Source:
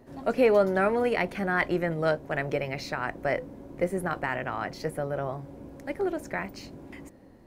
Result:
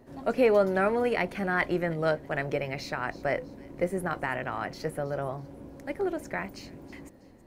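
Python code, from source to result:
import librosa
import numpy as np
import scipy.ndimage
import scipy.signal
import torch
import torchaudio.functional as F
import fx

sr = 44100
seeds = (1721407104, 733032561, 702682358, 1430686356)

y = fx.echo_wet_highpass(x, sr, ms=323, feedback_pct=36, hz=3500.0, wet_db=-15.0)
y = y * 10.0 ** (-1.0 / 20.0)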